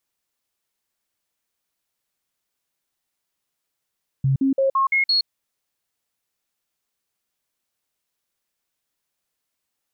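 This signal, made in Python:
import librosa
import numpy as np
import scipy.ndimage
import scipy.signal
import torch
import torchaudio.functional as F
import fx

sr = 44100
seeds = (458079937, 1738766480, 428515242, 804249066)

y = fx.stepped_sweep(sr, from_hz=135.0, direction='up', per_octave=1, tones=6, dwell_s=0.12, gap_s=0.05, level_db=-15.5)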